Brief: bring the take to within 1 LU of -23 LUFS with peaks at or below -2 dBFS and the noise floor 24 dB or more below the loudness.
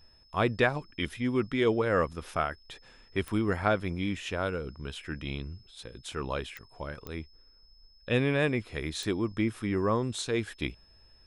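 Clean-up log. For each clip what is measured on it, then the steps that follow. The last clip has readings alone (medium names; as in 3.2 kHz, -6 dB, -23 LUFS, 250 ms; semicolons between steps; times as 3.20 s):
clicks found 4; steady tone 5.2 kHz; tone level -60 dBFS; loudness -31.0 LUFS; peak level -11.0 dBFS; loudness target -23.0 LUFS
-> de-click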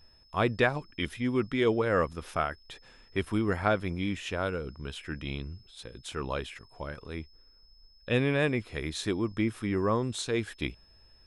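clicks found 0; steady tone 5.2 kHz; tone level -60 dBFS
-> band-stop 5.2 kHz, Q 30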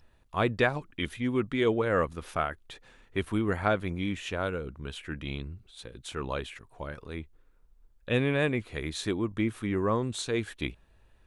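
steady tone not found; loudness -31.0 LUFS; peak level -11.0 dBFS; loudness target -23.0 LUFS
-> trim +8 dB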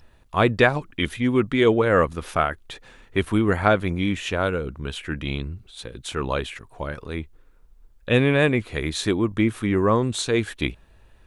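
loudness -23.0 LUFS; peak level -3.0 dBFS; noise floor -54 dBFS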